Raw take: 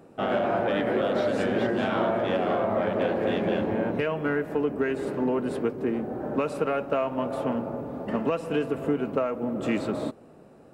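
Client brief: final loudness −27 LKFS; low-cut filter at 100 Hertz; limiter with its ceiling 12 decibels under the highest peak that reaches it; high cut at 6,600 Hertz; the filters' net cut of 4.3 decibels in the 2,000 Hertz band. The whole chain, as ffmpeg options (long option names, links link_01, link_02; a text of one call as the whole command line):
ffmpeg -i in.wav -af "highpass=100,lowpass=6600,equalizer=frequency=2000:width_type=o:gain=-6,volume=6.5dB,alimiter=limit=-19dB:level=0:latency=1" out.wav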